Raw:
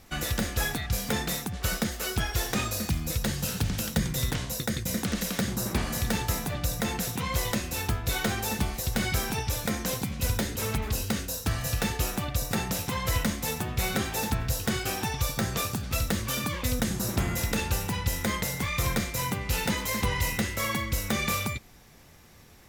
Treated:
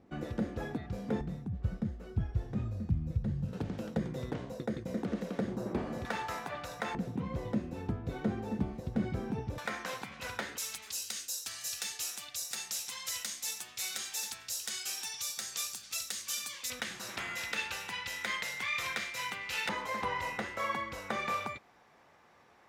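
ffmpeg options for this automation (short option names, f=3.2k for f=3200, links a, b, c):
-af "asetnsamples=n=441:p=0,asendcmd='1.21 bandpass f 110;3.53 bandpass f 400;6.05 bandpass f 1100;6.95 bandpass f 250;9.58 bandpass f 1400;10.58 bandpass f 6500;16.7 bandpass f 2300;19.69 bandpass f 950',bandpass=f=300:t=q:w=1:csg=0"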